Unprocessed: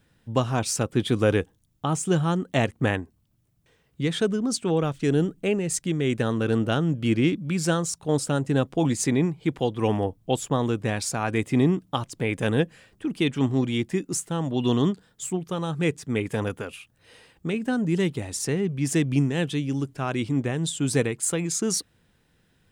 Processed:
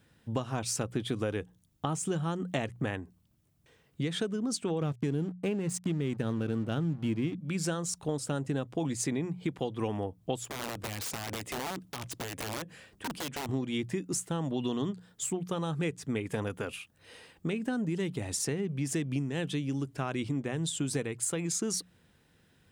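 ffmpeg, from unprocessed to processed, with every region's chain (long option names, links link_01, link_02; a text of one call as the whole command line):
ffmpeg -i in.wav -filter_complex "[0:a]asettb=1/sr,asplit=3[link_01][link_02][link_03];[link_01]atrim=end=4.814[link_04];[link_02]atrim=start=4.81:end=7.34,asetpts=PTS-STARTPTS,afade=type=in:duration=0.004:curve=qsin,afade=type=out:start_time=2.526:duration=0.004:curve=qsin,equalizer=frequency=150:width_type=o:width=2.2:gain=8,aeval=exprs='sgn(val(0))*max(abs(val(0))-0.0133,0)':channel_layout=same[link_05];[link_03]atrim=start=7.336[link_06];[link_04][link_05]acrossfade=duration=0.004:curve1=hsin:curve2=qsin[link_07];[link_07][link_06]acrossfade=duration=0.004:curve1=qsin:curve2=hsin,asettb=1/sr,asplit=3[link_08][link_09][link_10];[link_08]atrim=end=10.454[link_11];[link_09]atrim=start=10.45:end=13.49,asetpts=PTS-STARTPTS,afade=type=in:duration=0.004:curve=qsin,afade=type=out:start_time=3.036:duration=0.004:curve=qsin,acompressor=threshold=-31dB:ratio=12:attack=3.2:release=140:knee=1:detection=peak,aeval=exprs='(mod(33.5*val(0)+1,2)-1)/33.5':channel_layout=same[link_12];[link_10]atrim=start=13.486[link_13];[link_11][link_12]acrossfade=duration=0.004:curve1=hsin:curve2=qsin[link_14];[link_14][link_13]acrossfade=duration=0.004:curve1=qsin:curve2=hsin,highpass=42,bandreject=frequency=60:width_type=h:width=6,bandreject=frequency=120:width_type=h:width=6,bandreject=frequency=180:width_type=h:width=6,acompressor=threshold=-29dB:ratio=6" out.wav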